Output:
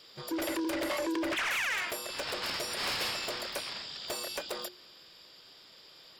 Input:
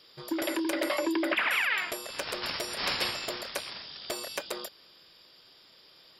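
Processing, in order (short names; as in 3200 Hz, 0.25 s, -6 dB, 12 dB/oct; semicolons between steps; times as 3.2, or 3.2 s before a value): soft clip -31 dBFS, distortion -9 dB; harmoniser +7 st -17 dB; notches 60/120/180/240/300/360 Hz; gain +2 dB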